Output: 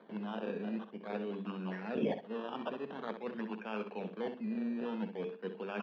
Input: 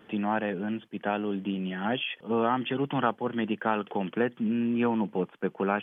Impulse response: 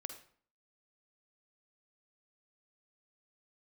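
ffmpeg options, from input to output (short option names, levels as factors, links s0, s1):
-filter_complex "[0:a]bandreject=f=50:t=h:w=6,bandreject=f=100:t=h:w=6,bandreject=f=150:t=h:w=6,bandreject=f=200:t=h:w=6,bandreject=f=250:t=h:w=6,bandreject=f=300:t=h:w=6,bandreject=f=350:t=h:w=6,bandreject=f=400:t=h:w=6,bandreject=f=450:t=h:w=6,areverse,acompressor=threshold=0.0178:ratio=6,areverse,crystalizer=i=7:c=0,acrusher=samples=16:mix=1:aa=0.000001:lfo=1:lforange=9.6:lforate=0.48,highpass=f=200:w=0.5412,highpass=f=200:w=1.3066,equalizer=f=210:t=q:w=4:g=6,equalizer=f=300:t=q:w=4:g=-7,equalizer=f=450:t=q:w=4:g=4,equalizer=f=800:t=q:w=4:g=-5,equalizer=f=1300:t=q:w=4:g=-6,equalizer=f=2000:t=q:w=4:g=-9,lowpass=f=2800:w=0.5412,lowpass=f=2800:w=1.3066,asplit=2[s0][s1];[s1]aecho=0:1:64|128|192:0.335|0.0703|0.0148[s2];[s0][s2]amix=inputs=2:normalize=0,volume=0.75"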